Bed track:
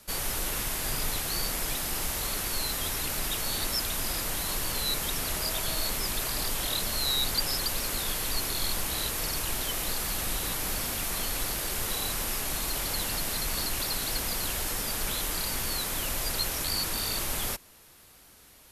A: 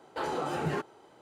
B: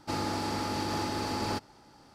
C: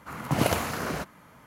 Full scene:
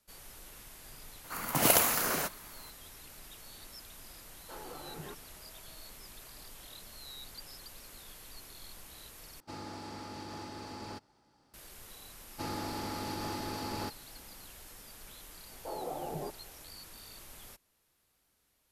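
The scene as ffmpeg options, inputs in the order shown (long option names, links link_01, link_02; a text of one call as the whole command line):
ffmpeg -i bed.wav -i cue0.wav -i cue1.wav -i cue2.wav -filter_complex "[1:a]asplit=2[link_01][link_02];[2:a]asplit=2[link_03][link_04];[0:a]volume=-20dB[link_05];[3:a]aemphasis=mode=production:type=bsi[link_06];[link_02]lowpass=frequency=700:width_type=q:width=2.7[link_07];[link_05]asplit=2[link_08][link_09];[link_08]atrim=end=9.404[link_10];[link_03]atrim=end=2.14,asetpts=PTS-STARTPTS,volume=-12dB[link_11];[link_09]atrim=start=11.536[link_12];[link_06]atrim=end=1.46,asetpts=PTS-STARTPTS,volume=-1.5dB,afade=type=in:duration=0.004:curve=hsin,afade=type=out:start_time=1.456:duration=0.004:curve=hsin,adelay=1240[link_13];[link_01]atrim=end=1.21,asetpts=PTS-STARTPTS,volume=-14.5dB,afade=type=in:duration=0.004:curve=hsin,afade=type=out:start_time=1.206:duration=0.004:curve=hsin,adelay=190953S[link_14];[link_04]atrim=end=2.14,asetpts=PTS-STARTPTS,volume=-6dB,afade=type=in:duration=0.004:curve=hsin,afade=type=out:start_time=2.136:duration=0.004:curve=hsin,adelay=12310[link_15];[link_07]atrim=end=1.21,asetpts=PTS-STARTPTS,volume=-10.5dB,afade=type=in:duration=0.004:curve=hsin,afade=type=out:start_time=1.206:duration=0.004:curve=hsin,adelay=15490[link_16];[link_10][link_11]acrossfade=duration=0.004:curve1=hsin:curve2=hsin[link_17];[link_17][link_12]acrossfade=duration=0.004:curve1=hsin:curve2=hsin[link_18];[link_18][link_13][link_14][link_15][link_16]amix=inputs=5:normalize=0" out.wav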